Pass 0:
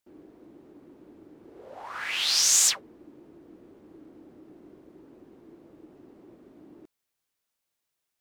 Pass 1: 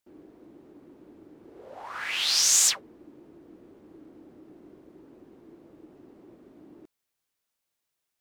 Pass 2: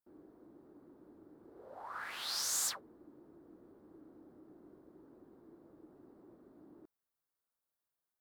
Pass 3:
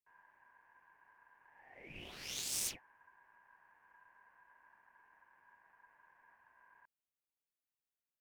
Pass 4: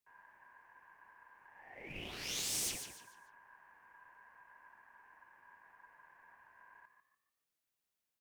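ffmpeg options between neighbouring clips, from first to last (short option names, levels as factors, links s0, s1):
-af anull
-af "highshelf=f=1900:t=q:w=1.5:g=-9.5,aexciter=amount=1.9:drive=4.2:freq=3600,volume=0.398"
-af "aeval=exprs='0.075*(cos(1*acos(clip(val(0)/0.075,-1,1)))-cos(1*PI/2))+0.0168*(cos(3*acos(clip(val(0)/0.075,-1,1)))-cos(3*PI/2))+0.000596*(cos(5*acos(clip(val(0)/0.075,-1,1)))-cos(5*PI/2))+0.000531*(cos(7*acos(clip(val(0)/0.075,-1,1)))-cos(7*PI/2))':c=same,aeval=exprs='val(0)*sin(2*PI*1300*n/s)':c=same,volume=1.78"
-filter_complex "[0:a]acrossover=split=300[s0][s1];[s0]acrusher=bits=4:mode=log:mix=0:aa=0.000001[s2];[s2][s1]amix=inputs=2:normalize=0,asoftclip=type=hard:threshold=0.015,asplit=5[s3][s4][s5][s6][s7];[s4]adelay=146,afreqshift=48,volume=0.376[s8];[s5]adelay=292,afreqshift=96,volume=0.124[s9];[s6]adelay=438,afreqshift=144,volume=0.0407[s10];[s7]adelay=584,afreqshift=192,volume=0.0135[s11];[s3][s8][s9][s10][s11]amix=inputs=5:normalize=0,volume=1.68"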